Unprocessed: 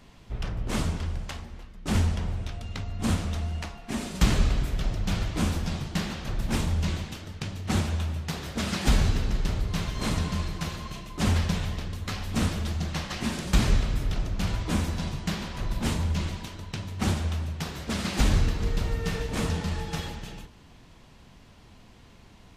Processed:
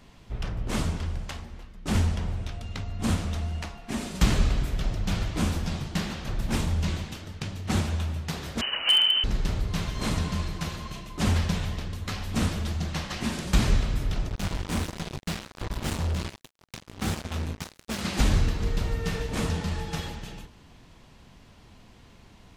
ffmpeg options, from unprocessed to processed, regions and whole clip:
-filter_complex "[0:a]asettb=1/sr,asplit=3[s0][s1][s2];[s0]atrim=end=8.614[s3];[s1]atrim=start=8.61:end=9.24,asetpts=PTS-STARTPTS,afade=t=in:d=0.004:c=qsin,afade=t=out:st=0.626:d=0.004:c=qsin,lowpass=f=2600:t=q:w=0.5098,lowpass=f=2600:t=q:w=0.6013,lowpass=f=2600:t=q:w=0.9,lowpass=f=2600:t=q:w=2.563,afreqshift=-3100,volume=5.62,asoftclip=hard,volume=0.178[s4];[s2]atrim=start=9.236[s5];[s3][s4]acrossfade=d=0.004:c1=hsin:c2=qsin[s6];[s6][s5]acrossfade=d=0.004:c1=qsin:c2=hsin,asettb=1/sr,asplit=3[s7][s8][s9];[s7]atrim=end=14.294[s10];[s8]atrim=start=14.29:end=18.01,asetpts=PTS-STARTPTS,afade=t=in:d=0.004:c=qsin,afade=t=out:st=3.716:d=0.004:c=qsin,flanger=delay=18:depth=5.7:speed=1.4,acrusher=bits=4:mix=0:aa=0.5[s11];[s9]atrim=start=18.006[s12];[s10][s11]acrossfade=d=0.004:c1=hsin:c2=qsin[s13];[s13][s12]acrossfade=d=0.004:c1=qsin:c2=hsin"

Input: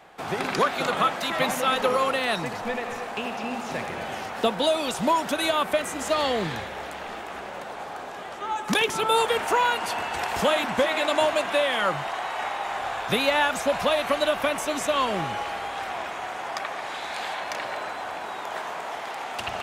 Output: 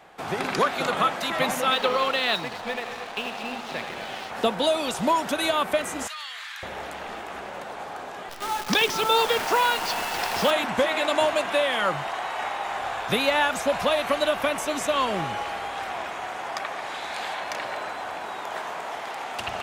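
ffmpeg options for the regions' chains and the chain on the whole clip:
-filter_complex "[0:a]asettb=1/sr,asplit=3[s0][s1][s2];[s0]atrim=end=1.714[s3];[s1]atrim=start=1.71:end=4.31,asetpts=PTS-STARTPTS,afade=t=in:d=0.004:c=qsin,afade=t=out:st=2.596:d=0.004:c=qsin,lowpass=f=4000:t=q:w=2.2,lowshelf=f=130:g=-9,aeval=exprs='sgn(val(0))*max(abs(val(0))-0.00891,0)':c=same[s4];[s2]atrim=start=4.306[s5];[s3][s4]acrossfade=d=0.004:c1=hsin:c2=qsin[s6];[s6][s5]acrossfade=d=0.004:c1=qsin:c2=hsin,asettb=1/sr,asplit=3[s7][s8][s9];[s7]atrim=end=6.074[s10];[s8]atrim=start=6.07:end=6.63,asetpts=PTS-STARTPTS,afade=t=in:d=0.004:c=qsin,afade=t=out:st=0.556:d=0.004:c=qsin,highpass=f=1300:w=0.5412,highpass=f=1300:w=1.3066,acompressor=threshold=0.0224:ratio=4:attack=3.2:release=140:knee=1:detection=peak[s11];[s9]atrim=start=6.626[s12];[s10][s11]acrossfade=d=0.004:c1=hsin:c2=qsin[s13];[s13][s12]acrossfade=d=0.004:c1=qsin:c2=hsin,asettb=1/sr,asplit=3[s14][s15][s16];[s14]atrim=end=8.294[s17];[s15]atrim=start=8.29:end=10.51,asetpts=PTS-STARTPTS,afade=t=in:d=0.004:c=qsin,afade=t=out:st=2.216:d=0.004:c=qsin,highpass=110,highshelf=f=7200:t=q:w=3:g=-12.5,acrusher=bits=6:dc=4:mix=0:aa=0.000001[s18];[s16]atrim=start=10.506[s19];[s17][s18]acrossfade=d=0.004:c1=hsin:c2=qsin[s20];[s20][s19]acrossfade=d=0.004:c1=qsin:c2=hsin"

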